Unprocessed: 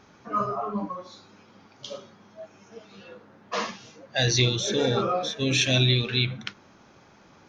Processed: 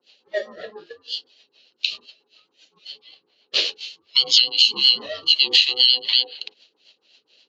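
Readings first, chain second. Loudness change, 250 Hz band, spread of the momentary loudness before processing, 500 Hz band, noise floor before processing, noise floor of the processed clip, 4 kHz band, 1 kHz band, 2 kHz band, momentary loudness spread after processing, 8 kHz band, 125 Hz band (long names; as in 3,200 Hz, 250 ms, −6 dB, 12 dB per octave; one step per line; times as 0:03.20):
+8.0 dB, below −15 dB, 19 LU, −5.5 dB, −55 dBFS, −71 dBFS, +12.0 dB, −14.0 dB, +2.5 dB, 17 LU, −2.5 dB, below −30 dB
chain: spectral tilt +3 dB per octave
two-band tremolo in antiphase 4 Hz, depth 100%, crossover 680 Hz
low-pass with resonance 3,600 Hz, resonance Q 8.3
downward compressor 2.5 to 1, threshold −16 dBFS, peak gain reduction 10.5 dB
ring modulation 630 Hz
high-pass filter 410 Hz 12 dB per octave
rotating-speaker cabinet horn 7.5 Hz
flat-topped bell 1,300 Hz −11.5 dB
noise gate −49 dBFS, range −7 dB
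boost into a limiter +10.5 dB
level −1 dB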